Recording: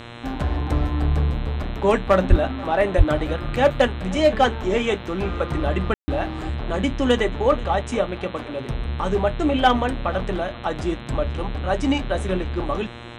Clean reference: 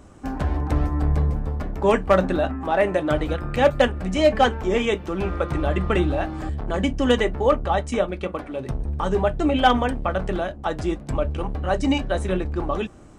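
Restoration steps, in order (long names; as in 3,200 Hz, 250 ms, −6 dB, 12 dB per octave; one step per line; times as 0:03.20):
hum removal 118.3 Hz, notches 35
0:02.29–0:02.41: high-pass filter 140 Hz 24 dB per octave
0:02.97–0:03.09: high-pass filter 140 Hz 24 dB per octave
ambience match 0:05.94–0:06.08
echo removal 484 ms −21.5 dB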